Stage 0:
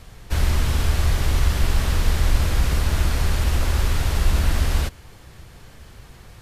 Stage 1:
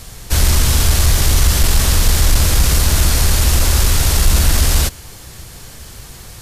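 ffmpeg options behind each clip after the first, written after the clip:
ffmpeg -i in.wav -af "acontrast=87,bass=frequency=250:gain=0,treble=frequency=4000:gain=12" out.wav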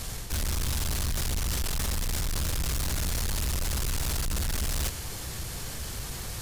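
ffmpeg -i in.wav -af "areverse,acompressor=threshold=-18dB:ratio=6,areverse,asoftclip=type=tanh:threshold=-26dB" out.wav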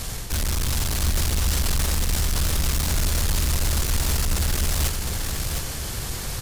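ffmpeg -i in.wav -af "aecho=1:1:708:0.562,volume=5dB" out.wav

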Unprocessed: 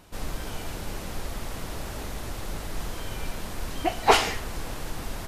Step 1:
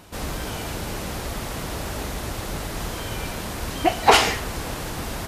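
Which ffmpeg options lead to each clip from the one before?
ffmpeg -i in.wav -af "highpass=45,alimiter=level_in=7.5dB:limit=-1dB:release=50:level=0:latency=1,volume=-1dB" out.wav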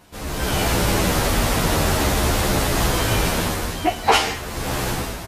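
ffmpeg -i in.wav -filter_complex "[0:a]dynaudnorm=framelen=120:gausssize=7:maxgain=15dB,asplit=2[link_01][link_02];[link_02]adelay=11,afreqshift=-0.47[link_03];[link_01][link_03]amix=inputs=2:normalize=1" out.wav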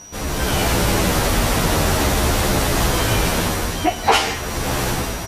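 ffmpeg -i in.wav -filter_complex "[0:a]asplit=2[link_01][link_02];[link_02]acompressor=threshold=-27dB:ratio=6,volume=1dB[link_03];[link_01][link_03]amix=inputs=2:normalize=0,aeval=exprs='val(0)+0.0141*sin(2*PI*5800*n/s)':channel_layout=same,volume=-1dB" out.wav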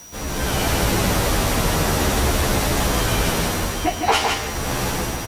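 ffmpeg -i in.wav -filter_complex "[0:a]aecho=1:1:160:0.596,acrossover=split=190|680|4400[link_01][link_02][link_03][link_04];[link_04]acrusher=bits=6:mix=0:aa=0.000001[link_05];[link_01][link_02][link_03][link_05]amix=inputs=4:normalize=0,volume=-3dB" out.wav

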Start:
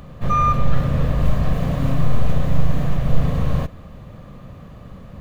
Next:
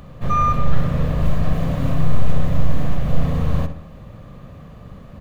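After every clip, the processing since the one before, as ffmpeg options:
ffmpeg -i in.wav -filter_complex "[0:a]asplit=2[link_01][link_02];[link_02]adelay=62,lowpass=frequency=3300:poles=1,volume=-9.5dB,asplit=2[link_03][link_04];[link_04]adelay=62,lowpass=frequency=3300:poles=1,volume=0.52,asplit=2[link_05][link_06];[link_06]adelay=62,lowpass=frequency=3300:poles=1,volume=0.52,asplit=2[link_07][link_08];[link_08]adelay=62,lowpass=frequency=3300:poles=1,volume=0.52,asplit=2[link_09][link_10];[link_10]adelay=62,lowpass=frequency=3300:poles=1,volume=0.52,asplit=2[link_11][link_12];[link_12]adelay=62,lowpass=frequency=3300:poles=1,volume=0.52[link_13];[link_01][link_03][link_05][link_07][link_09][link_11][link_13]amix=inputs=7:normalize=0,volume=-1dB" out.wav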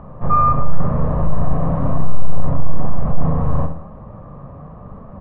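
ffmpeg -i in.wav -af "acontrast=72,lowpass=frequency=1000:width_type=q:width=2.3,flanger=delay=4.5:depth=2.8:regen=81:speed=1:shape=sinusoidal" out.wav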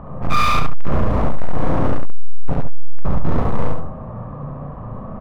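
ffmpeg -i in.wav -filter_complex "[0:a]asoftclip=type=hard:threshold=-17.5dB,asplit=2[link_01][link_02];[link_02]aecho=0:1:34.99|69.97|139.9:0.447|1|0.355[link_03];[link_01][link_03]amix=inputs=2:normalize=0,volume=2dB" out.wav

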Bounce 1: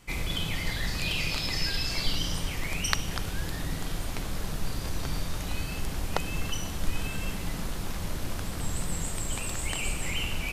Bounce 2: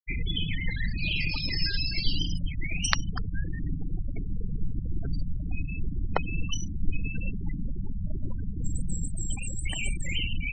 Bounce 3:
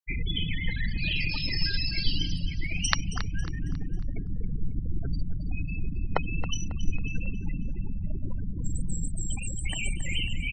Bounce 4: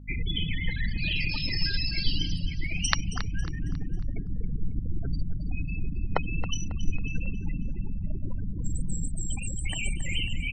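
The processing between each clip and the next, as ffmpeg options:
ffmpeg -i in.wav -af "afftfilt=real='re*gte(hypot(re,im),0.0501)':imag='im*gte(hypot(re,im),0.0501)':win_size=1024:overlap=0.75,volume=2.5dB" out.wav
ffmpeg -i in.wav -af "aecho=1:1:273|546|819|1092:0.224|0.0873|0.0341|0.0133" out.wav
ffmpeg -i in.wav -af "aeval=exprs='val(0)+0.00708*(sin(2*PI*50*n/s)+sin(2*PI*2*50*n/s)/2+sin(2*PI*3*50*n/s)/3+sin(2*PI*4*50*n/s)/4+sin(2*PI*5*50*n/s)/5)':channel_layout=same" out.wav

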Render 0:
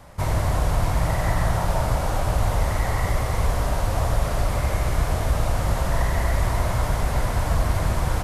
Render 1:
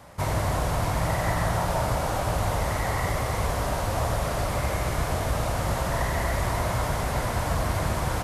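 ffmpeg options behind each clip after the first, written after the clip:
ffmpeg -i in.wav -af "highpass=frequency=110:poles=1" out.wav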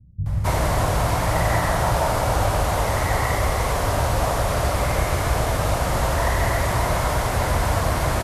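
ffmpeg -i in.wav -filter_complex "[0:a]acrossover=split=180[link_01][link_02];[link_02]adelay=260[link_03];[link_01][link_03]amix=inputs=2:normalize=0,volume=5.5dB" out.wav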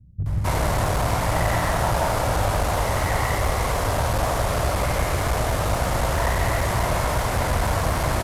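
ffmpeg -i in.wav -af "aeval=exprs='clip(val(0),-1,0.0944)':channel_layout=same" out.wav

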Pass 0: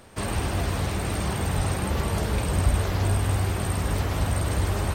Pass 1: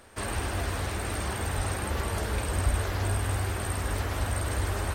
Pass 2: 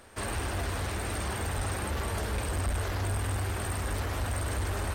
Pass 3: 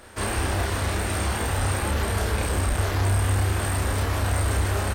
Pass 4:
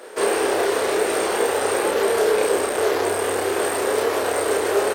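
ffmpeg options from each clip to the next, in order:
ffmpeg -i in.wav -af "equalizer=frequency=160:width_type=o:width=0.67:gain=-10,equalizer=frequency=1600:width_type=o:width=0.67:gain=4,equalizer=frequency=10000:width_type=o:width=0.67:gain=3,volume=-3.5dB" out.wav
ffmpeg -i in.wav -af "asoftclip=type=tanh:threshold=-24.5dB" out.wav
ffmpeg -i in.wav -filter_complex "[0:a]asplit=2[link_01][link_02];[link_02]adelay=30,volume=-2dB[link_03];[link_01][link_03]amix=inputs=2:normalize=0,volume=5dB" out.wav
ffmpeg -i in.wav -af "highpass=frequency=430:width_type=q:width=4.9,volume=3.5dB" out.wav

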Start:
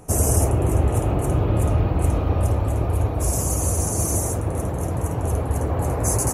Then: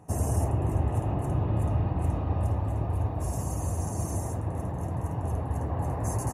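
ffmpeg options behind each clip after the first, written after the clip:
ffmpeg -i in.wav -af "highpass=77,highshelf=frequency=2800:gain=-11,aecho=1:1:1.1:0.4,volume=-7dB" out.wav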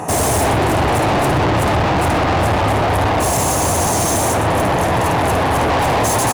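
ffmpeg -i in.wav -filter_complex "[0:a]asplit=2[link_01][link_02];[link_02]highpass=frequency=720:poles=1,volume=35dB,asoftclip=type=tanh:threshold=-14dB[link_03];[link_01][link_03]amix=inputs=2:normalize=0,lowpass=frequency=6900:poles=1,volume=-6dB,asplit=2[link_04][link_05];[link_05]asoftclip=type=hard:threshold=-23.5dB,volume=-6.5dB[link_06];[link_04][link_06]amix=inputs=2:normalize=0,aecho=1:1:125:0.188,volume=3dB" out.wav

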